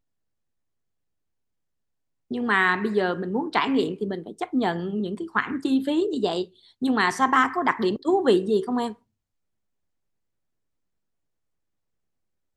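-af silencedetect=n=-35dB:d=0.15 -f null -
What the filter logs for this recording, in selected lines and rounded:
silence_start: 0.00
silence_end: 2.31 | silence_duration: 2.31
silence_start: 6.44
silence_end: 6.82 | silence_duration: 0.38
silence_start: 8.93
silence_end: 12.57 | silence_duration: 3.64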